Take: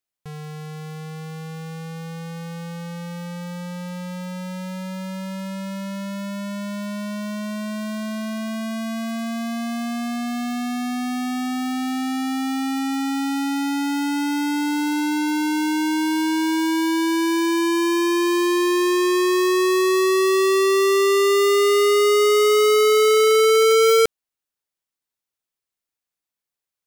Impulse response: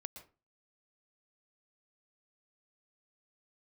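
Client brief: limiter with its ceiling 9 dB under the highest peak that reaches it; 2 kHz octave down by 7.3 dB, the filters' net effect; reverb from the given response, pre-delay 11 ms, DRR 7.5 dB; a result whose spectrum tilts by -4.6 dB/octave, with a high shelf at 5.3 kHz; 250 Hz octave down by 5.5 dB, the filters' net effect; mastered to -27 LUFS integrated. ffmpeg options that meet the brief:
-filter_complex "[0:a]equalizer=f=250:t=o:g=-8,equalizer=f=2000:t=o:g=-8,highshelf=f=5300:g=-5,alimiter=limit=0.0708:level=0:latency=1,asplit=2[s0][s1];[1:a]atrim=start_sample=2205,adelay=11[s2];[s1][s2]afir=irnorm=-1:irlink=0,volume=0.668[s3];[s0][s3]amix=inputs=2:normalize=0,volume=1.26"

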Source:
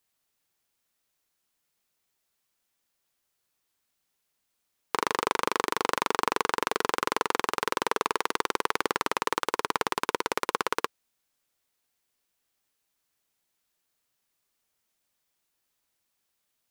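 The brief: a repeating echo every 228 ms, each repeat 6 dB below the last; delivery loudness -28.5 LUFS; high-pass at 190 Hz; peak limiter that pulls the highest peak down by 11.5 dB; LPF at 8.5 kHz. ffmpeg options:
-af "highpass=190,lowpass=8500,alimiter=limit=0.141:level=0:latency=1,aecho=1:1:228|456|684|912|1140|1368:0.501|0.251|0.125|0.0626|0.0313|0.0157,volume=2.82"

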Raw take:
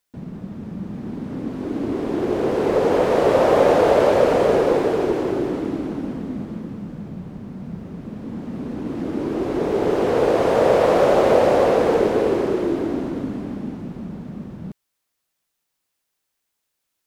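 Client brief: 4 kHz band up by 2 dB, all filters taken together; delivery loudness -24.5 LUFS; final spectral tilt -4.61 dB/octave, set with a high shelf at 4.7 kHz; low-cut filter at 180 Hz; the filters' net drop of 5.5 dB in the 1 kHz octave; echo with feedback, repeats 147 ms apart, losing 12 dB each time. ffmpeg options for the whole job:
-af "highpass=180,equalizer=f=1000:t=o:g=-8,equalizer=f=4000:t=o:g=5,highshelf=f=4700:g=-4,aecho=1:1:147|294|441:0.251|0.0628|0.0157,volume=0.668"

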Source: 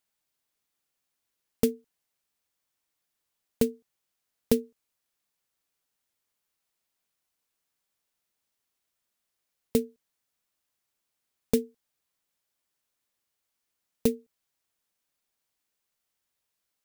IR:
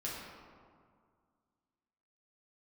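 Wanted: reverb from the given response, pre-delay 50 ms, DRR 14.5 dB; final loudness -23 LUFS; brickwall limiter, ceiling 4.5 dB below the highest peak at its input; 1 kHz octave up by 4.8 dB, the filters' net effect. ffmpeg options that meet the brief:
-filter_complex "[0:a]equalizer=f=1000:t=o:g=6.5,alimiter=limit=0.266:level=0:latency=1,asplit=2[s0][s1];[1:a]atrim=start_sample=2205,adelay=50[s2];[s1][s2]afir=irnorm=-1:irlink=0,volume=0.15[s3];[s0][s3]amix=inputs=2:normalize=0,volume=3.35"

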